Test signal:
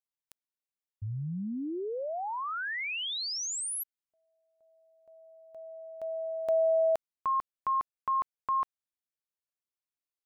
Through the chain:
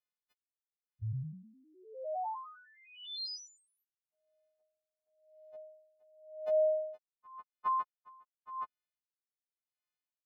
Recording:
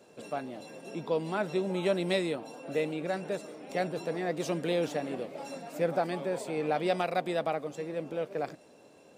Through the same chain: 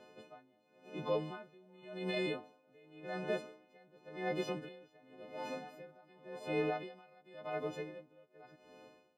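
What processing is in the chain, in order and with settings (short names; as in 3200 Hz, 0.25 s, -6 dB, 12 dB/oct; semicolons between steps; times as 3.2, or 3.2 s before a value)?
frequency quantiser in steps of 3 st; high shelf 5000 Hz +9.5 dB; limiter -22 dBFS; air absorption 360 m; dB-linear tremolo 0.91 Hz, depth 29 dB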